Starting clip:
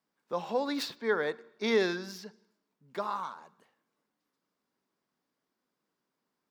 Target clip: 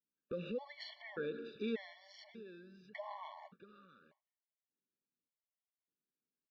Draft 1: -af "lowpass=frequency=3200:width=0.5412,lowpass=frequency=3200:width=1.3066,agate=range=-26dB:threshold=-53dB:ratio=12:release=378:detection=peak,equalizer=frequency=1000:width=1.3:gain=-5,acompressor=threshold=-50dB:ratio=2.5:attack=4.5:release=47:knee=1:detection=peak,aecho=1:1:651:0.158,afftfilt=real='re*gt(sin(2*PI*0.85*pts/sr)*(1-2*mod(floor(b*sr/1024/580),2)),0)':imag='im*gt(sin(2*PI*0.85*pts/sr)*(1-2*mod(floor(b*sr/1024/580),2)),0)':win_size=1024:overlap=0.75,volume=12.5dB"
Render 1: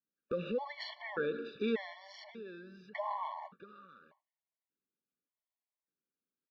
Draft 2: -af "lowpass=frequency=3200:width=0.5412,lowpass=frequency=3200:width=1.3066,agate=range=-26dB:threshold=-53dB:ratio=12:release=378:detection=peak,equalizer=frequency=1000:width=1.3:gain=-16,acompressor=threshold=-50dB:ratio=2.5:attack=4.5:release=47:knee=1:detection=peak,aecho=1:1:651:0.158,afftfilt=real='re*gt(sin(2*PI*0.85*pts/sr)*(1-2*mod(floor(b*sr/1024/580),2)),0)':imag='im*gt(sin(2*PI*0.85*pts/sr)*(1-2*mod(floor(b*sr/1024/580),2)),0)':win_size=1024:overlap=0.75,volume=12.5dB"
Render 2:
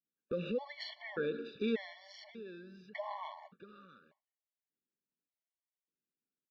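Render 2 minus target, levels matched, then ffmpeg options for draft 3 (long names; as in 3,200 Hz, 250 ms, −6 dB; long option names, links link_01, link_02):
downward compressor: peak gain reduction −5 dB
-af "lowpass=frequency=3200:width=0.5412,lowpass=frequency=3200:width=1.3066,agate=range=-26dB:threshold=-53dB:ratio=12:release=378:detection=peak,equalizer=frequency=1000:width=1.3:gain=-16,acompressor=threshold=-58dB:ratio=2.5:attack=4.5:release=47:knee=1:detection=peak,aecho=1:1:651:0.158,afftfilt=real='re*gt(sin(2*PI*0.85*pts/sr)*(1-2*mod(floor(b*sr/1024/580),2)),0)':imag='im*gt(sin(2*PI*0.85*pts/sr)*(1-2*mod(floor(b*sr/1024/580),2)),0)':win_size=1024:overlap=0.75,volume=12.5dB"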